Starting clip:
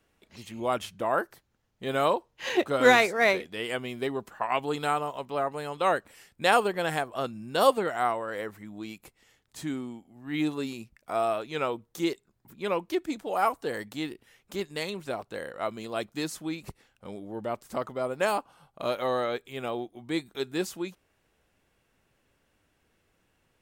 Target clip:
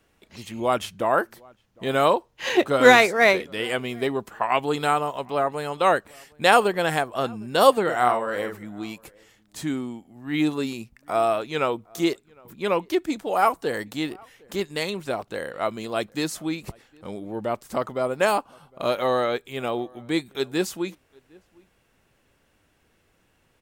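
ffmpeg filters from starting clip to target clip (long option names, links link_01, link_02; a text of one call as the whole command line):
ffmpeg -i in.wav -filter_complex "[0:a]asplit=3[link_01][link_02][link_03];[link_01]afade=type=out:start_time=7.87:duration=0.02[link_04];[link_02]asplit=2[link_05][link_06];[link_06]adelay=49,volume=-6dB[link_07];[link_05][link_07]amix=inputs=2:normalize=0,afade=type=in:start_time=7.87:duration=0.02,afade=type=out:start_time=8.57:duration=0.02[link_08];[link_03]afade=type=in:start_time=8.57:duration=0.02[link_09];[link_04][link_08][link_09]amix=inputs=3:normalize=0,asplit=2[link_10][link_11];[link_11]adelay=758,volume=-27dB,highshelf=frequency=4000:gain=-17.1[link_12];[link_10][link_12]amix=inputs=2:normalize=0,volume=5.5dB" out.wav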